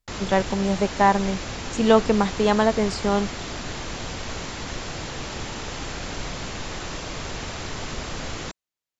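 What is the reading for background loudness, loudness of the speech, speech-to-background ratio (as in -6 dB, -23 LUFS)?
-32.5 LUFS, -21.5 LUFS, 11.0 dB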